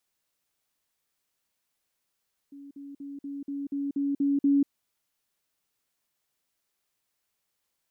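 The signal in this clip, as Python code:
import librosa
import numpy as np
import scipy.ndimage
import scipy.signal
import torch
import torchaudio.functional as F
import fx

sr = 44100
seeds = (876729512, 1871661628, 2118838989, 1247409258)

y = fx.level_ladder(sr, hz=281.0, from_db=-42.5, step_db=3.0, steps=9, dwell_s=0.19, gap_s=0.05)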